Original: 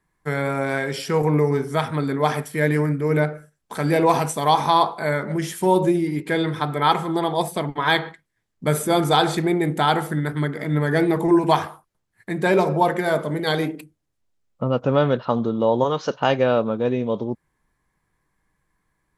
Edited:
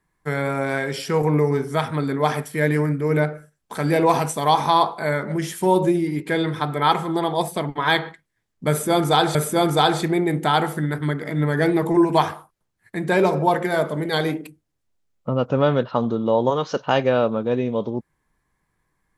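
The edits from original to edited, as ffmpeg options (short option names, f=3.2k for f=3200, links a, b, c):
-filter_complex "[0:a]asplit=2[a][b];[a]atrim=end=9.352[c];[b]atrim=start=8.688[d];[c][d]acrossfade=d=0.004:c1=hsin:c2=hsin"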